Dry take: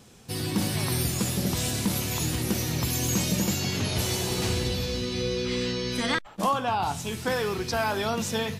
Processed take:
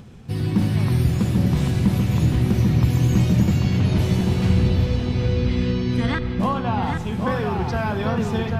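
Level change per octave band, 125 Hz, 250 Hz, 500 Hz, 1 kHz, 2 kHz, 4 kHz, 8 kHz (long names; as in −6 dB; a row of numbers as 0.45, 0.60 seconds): +12.0, +8.5, +2.5, +1.5, 0.0, −5.0, −11.5 decibels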